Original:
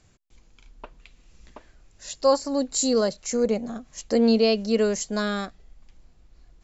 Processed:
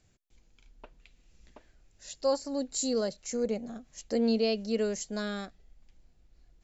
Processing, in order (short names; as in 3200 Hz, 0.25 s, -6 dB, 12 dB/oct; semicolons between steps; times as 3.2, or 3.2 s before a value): bell 1100 Hz -5.5 dB 0.53 oct; gain -7.5 dB